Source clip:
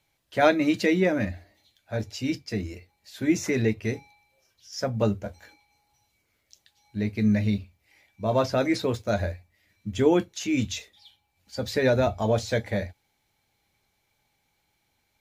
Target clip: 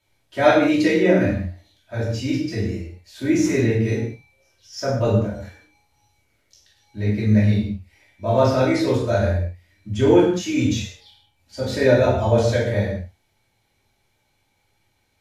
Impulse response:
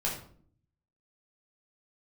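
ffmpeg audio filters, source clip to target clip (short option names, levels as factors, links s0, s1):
-filter_complex "[1:a]atrim=start_sample=2205,afade=t=out:st=0.18:d=0.01,atrim=end_sample=8379,asetrate=26460,aresample=44100[s0];[0:a][s0]afir=irnorm=-1:irlink=0,volume=0.596"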